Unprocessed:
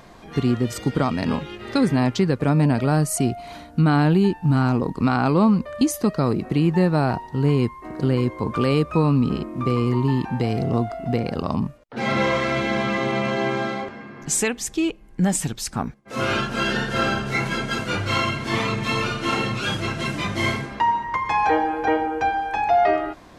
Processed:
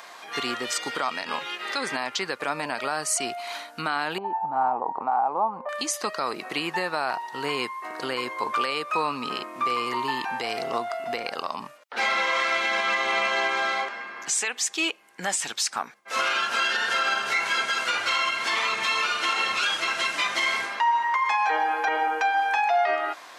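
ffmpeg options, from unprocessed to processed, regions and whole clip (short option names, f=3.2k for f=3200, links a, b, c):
-filter_complex "[0:a]asettb=1/sr,asplit=3[a][b][c];[a]atrim=end=4.184[d];[b]atrim=start=4.18:end=5.69,asetpts=PTS-STARTPTS,afade=t=in:d=0.004:c=qsin,afade=t=out:st=1.506:d=0.004:c=qsin,acompressor=threshold=-22dB:ratio=10:attack=3.2:release=140:knee=1:detection=peak,lowpass=f=820:t=q:w=6.1[e];[c]atrim=start=5.686[f];[d][e]acrossfade=d=0.004:c1=hsin:c2=qsin[g];[g][f]acrossfade=d=0.004:c1=qsin:c2=hsin,acrossover=split=9100[h][i];[i]acompressor=threshold=-58dB:ratio=4:attack=1:release=60[j];[h][j]amix=inputs=2:normalize=0,highpass=980,alimiter=limit=-23dB:level=0:latency=1:release=159,volume=8dB"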